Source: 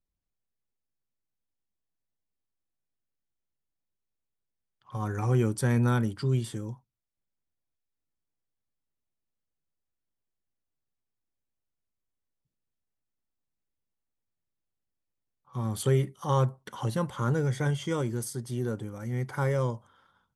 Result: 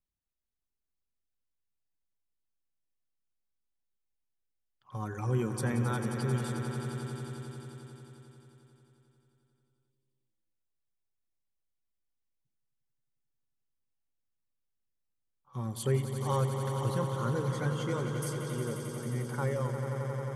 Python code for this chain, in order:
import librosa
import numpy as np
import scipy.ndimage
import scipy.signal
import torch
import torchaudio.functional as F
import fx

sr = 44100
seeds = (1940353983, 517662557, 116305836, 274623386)

y = fx.dereverb_blind(x, sr, rt60_s=1.8)
y = fx.echo_swell(y, sr, ms=89, loudest=5, wet_db=-10.0)
y = y * 10.0 ** (-4.0 / 20.0)